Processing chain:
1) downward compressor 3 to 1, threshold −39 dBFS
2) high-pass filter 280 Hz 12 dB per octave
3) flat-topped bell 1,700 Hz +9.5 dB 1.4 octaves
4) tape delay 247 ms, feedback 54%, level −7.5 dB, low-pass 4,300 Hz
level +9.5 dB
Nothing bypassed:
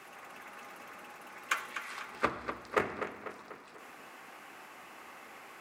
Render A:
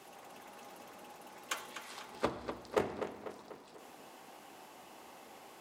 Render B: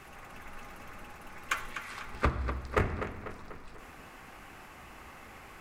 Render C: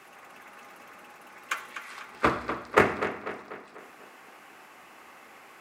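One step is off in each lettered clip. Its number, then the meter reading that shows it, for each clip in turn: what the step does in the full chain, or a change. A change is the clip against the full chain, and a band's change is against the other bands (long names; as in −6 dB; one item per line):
3, change in integrated loudness −4.0 LU
2, 125 Hz band +17.0 dB
1, change in momentary loudness spread +9 LU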